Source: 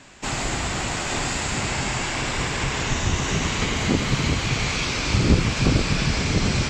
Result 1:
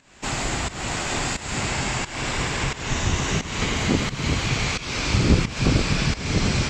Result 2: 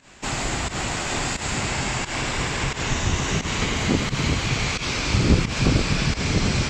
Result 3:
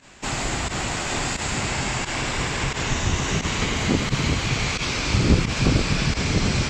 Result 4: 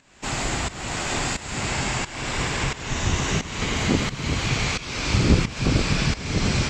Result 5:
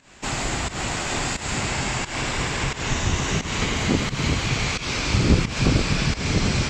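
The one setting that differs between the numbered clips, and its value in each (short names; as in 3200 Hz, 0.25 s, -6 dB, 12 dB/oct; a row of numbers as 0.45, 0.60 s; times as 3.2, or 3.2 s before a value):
pump, release: 310, 119, 67, 467, 181 ms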